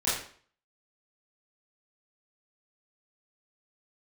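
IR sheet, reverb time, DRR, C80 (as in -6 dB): 0.50 s, -11.5 dB, 6.5 dB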